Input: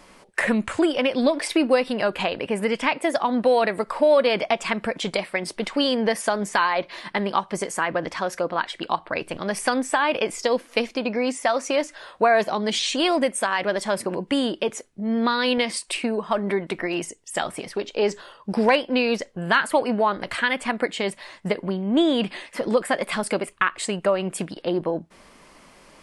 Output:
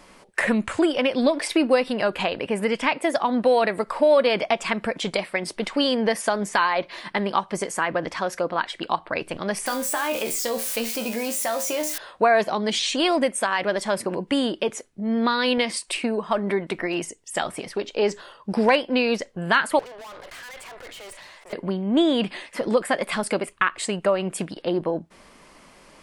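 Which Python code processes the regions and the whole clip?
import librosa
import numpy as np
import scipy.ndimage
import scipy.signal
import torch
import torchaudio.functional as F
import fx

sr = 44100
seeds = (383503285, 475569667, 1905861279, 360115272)

y = fx.chain(x, sr, fx.crossing_spikes(level_db=-20.5),
    fx.comb_fb(f0_hz=76.0, decay_s=0.28, harmonics='all', damping=0.0, mix_pct=80),
    fx.env_flatten(amount_pct=50), at=(9.66, 11.98))
y = fx.chain(y, sr, fx.highpass(hz=460.0, slope=24),
    fx.tube_stage(drive_db=39.0, bias=0.65),
    fx.sustainer(db_per_s=28.0), at=(19.79, 21.53))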